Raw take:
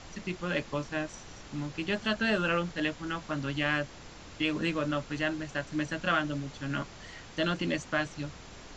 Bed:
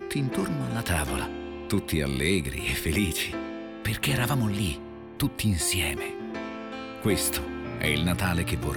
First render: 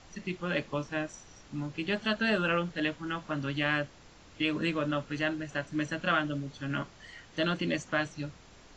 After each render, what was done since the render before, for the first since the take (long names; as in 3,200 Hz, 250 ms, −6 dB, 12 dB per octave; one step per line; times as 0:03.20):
noise reduction from a noise print 7 dB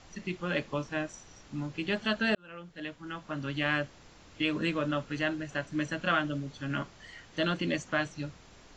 0:02.35–0:03.72: fade in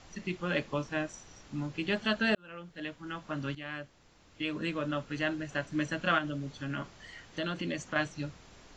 0:03.55–0:05.56: fade in, from −13.5 dB
0:06.18–0:07.96: downward compressor 2.5 to 1, threshold −32 dBFS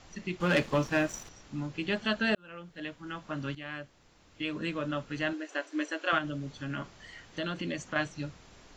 0:00.40–0:01.29: leveller curve on the samples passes 2
0:05.33–0:06.13: linear-phase brick-wall high-pass 270 Hz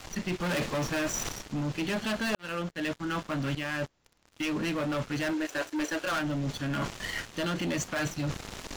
leveller curve on the samples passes 5
reversed playback
downward compressor 6 to 1, threshold −30 dBFS, peak gain reduction 12 dB
reversed playback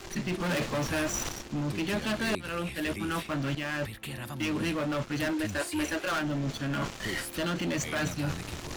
mix in bed −13.5 dB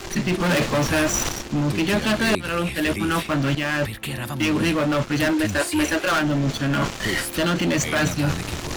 level +9.5 dB